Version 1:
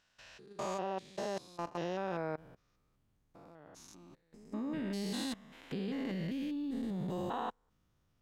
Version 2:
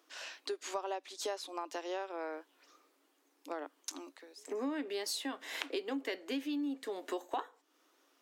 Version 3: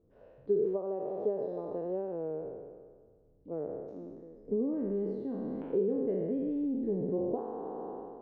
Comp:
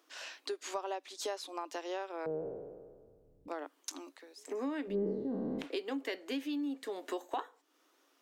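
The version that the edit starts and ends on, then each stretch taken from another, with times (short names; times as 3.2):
2
2.26–3.48 from 3
4.91–5.63 from 3, crossfade 0.10 s
not used: 1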